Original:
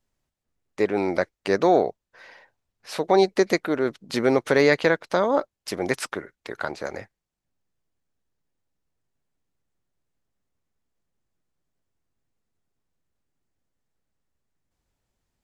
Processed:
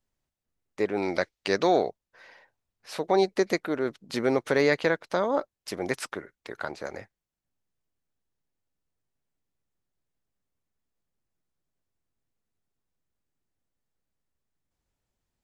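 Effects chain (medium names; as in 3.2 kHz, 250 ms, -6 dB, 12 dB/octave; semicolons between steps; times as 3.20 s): 1.02–1.89 s: peaking EQ 4 kHz +8.5 dB 1.9 oct; trim -4.5 dB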